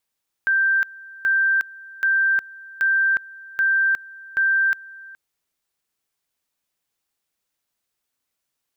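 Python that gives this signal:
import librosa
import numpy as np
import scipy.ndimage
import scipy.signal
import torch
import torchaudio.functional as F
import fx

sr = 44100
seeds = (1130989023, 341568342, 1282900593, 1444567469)

y = fx.two_level_tone(sr, hz=1570.0, level_db=-15.5, drop_db=22.0, high_s=0.36, low_s=0.42, rounds=6)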